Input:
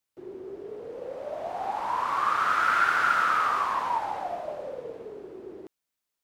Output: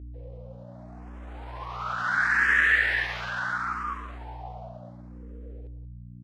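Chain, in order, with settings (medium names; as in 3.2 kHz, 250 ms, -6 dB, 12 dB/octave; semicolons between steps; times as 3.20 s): Doppler pass-by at 2.51 s, 14 m/s, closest 10 m; pitch shift +4.5 st; distance through air 59 m; echo from a far wall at 31 m, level -14 dB; hum 60 Hz, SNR 11 dB; barber-pole phaser +0.72 Hz; trim +3.5 dB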